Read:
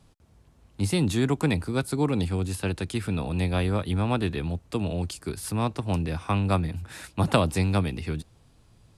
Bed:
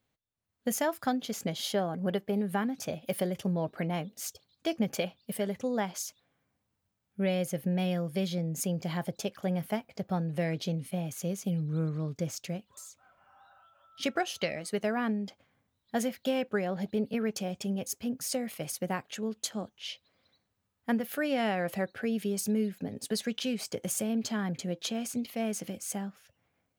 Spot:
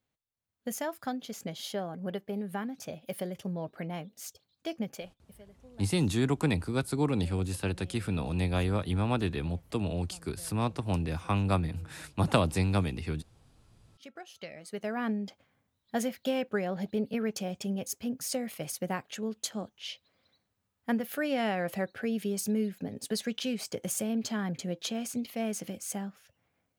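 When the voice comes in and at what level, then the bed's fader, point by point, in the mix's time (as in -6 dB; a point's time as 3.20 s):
5.00 s, -3.5 dB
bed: 4.82 s -5 dB
5.48 s -23.5 dB
13.78 s -23.5 dB
15.09 s -0.5 dB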